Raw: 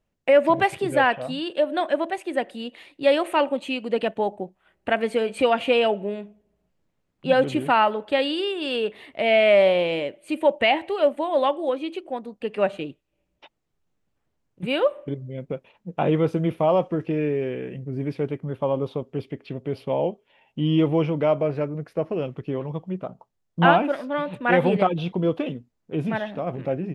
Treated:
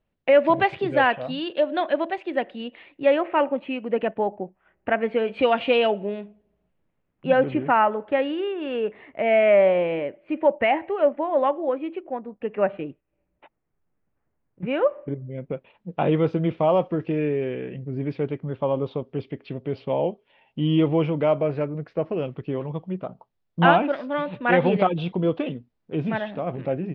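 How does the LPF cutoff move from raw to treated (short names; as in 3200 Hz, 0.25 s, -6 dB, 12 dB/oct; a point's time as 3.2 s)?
LPF 24 dB/oct
2.17 s 4000 Hz
3.25 s 2400 Hz
5 s 2400 Hz
5.54 s 4000 Hz
6.19 s 4000 Hz
7.71 s 2200 Hz
15.18 s 2200 Hz
15.93 s 4500 Hz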